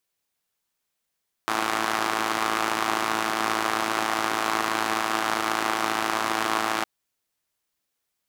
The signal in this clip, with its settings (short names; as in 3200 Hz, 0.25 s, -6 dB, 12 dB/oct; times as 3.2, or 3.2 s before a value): four-cylinder engine model, steady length 5.36 s, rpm 3300, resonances 360/770/1100 Hz